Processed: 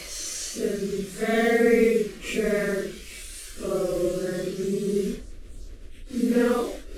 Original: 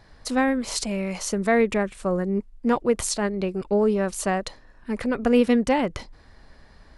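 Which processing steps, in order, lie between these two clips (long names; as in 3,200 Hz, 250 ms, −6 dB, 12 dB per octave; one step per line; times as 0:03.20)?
linear delta modulator 64 kbit/s, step −33 dBFS
de-essing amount 65%
phaser with its sweep stopped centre 360 Hz, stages 4
extreme stretch with random phases 4.2×, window 0.05 s, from 0:01.18
level +1 dB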